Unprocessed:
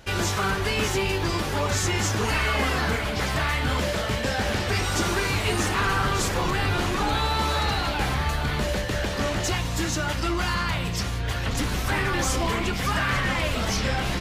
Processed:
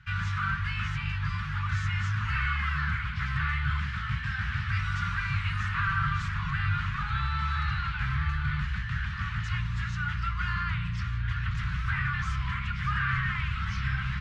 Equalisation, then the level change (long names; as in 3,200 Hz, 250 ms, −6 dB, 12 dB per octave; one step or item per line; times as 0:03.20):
high-pass filter 48 Hz
elliptic band-stop filter 150–1,300 Hz, stop band 50 dB
low-pass filter 1,800 Hz 12 dB per octave
0.0 dB